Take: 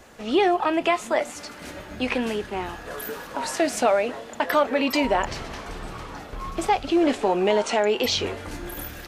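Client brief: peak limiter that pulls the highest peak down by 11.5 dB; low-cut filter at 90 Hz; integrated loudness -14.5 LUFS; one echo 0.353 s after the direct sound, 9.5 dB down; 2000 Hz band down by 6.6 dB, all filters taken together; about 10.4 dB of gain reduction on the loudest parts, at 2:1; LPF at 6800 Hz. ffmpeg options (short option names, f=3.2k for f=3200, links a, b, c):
-af "highpass=90,lowpass=6.8k,equalizer=f=2k:t=o:g=-8.5,acompressor=threshold=-36dB:ratio=2,alimiter=level_in=5.5dB:limit=-24dB:level=0:latency=1,volume=-5.5dB,aecho=1:1:353:0.335,volume=24dB"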